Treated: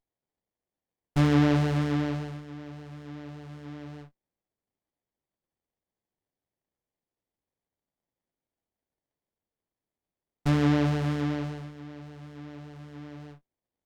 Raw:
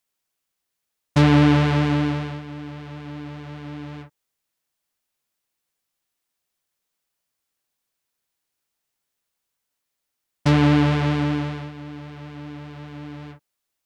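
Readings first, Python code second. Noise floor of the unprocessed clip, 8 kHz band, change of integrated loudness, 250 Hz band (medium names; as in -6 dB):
-81 dBFS, no reading, -6.5 dB, -6.5 dB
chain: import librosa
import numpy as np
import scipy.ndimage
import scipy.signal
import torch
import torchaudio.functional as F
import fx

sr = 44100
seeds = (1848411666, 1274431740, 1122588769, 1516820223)

y = fx.doubler(x, sr, ms=21.0, db=-10)
y = fx.running_max(y, sr, window=33)
y = y * 10.0 ** (-7.0 / 20.0)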